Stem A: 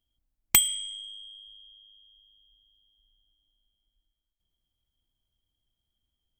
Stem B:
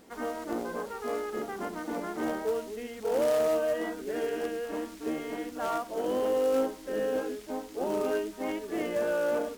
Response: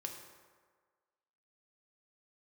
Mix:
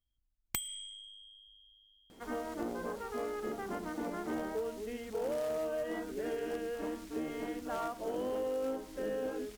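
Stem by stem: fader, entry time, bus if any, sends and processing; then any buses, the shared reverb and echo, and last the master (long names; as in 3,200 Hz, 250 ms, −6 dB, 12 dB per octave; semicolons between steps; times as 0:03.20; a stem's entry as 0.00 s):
−9.5 dB, 0.00 s, no send, no processing
−3.5 dB, 2.10 s, no send, no processing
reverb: not used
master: low-shelf EQ 140 Hz +8.5 dB; downward compressor 5 to 1, threshold −33 dBFS, peak gain reduction 9.5 dB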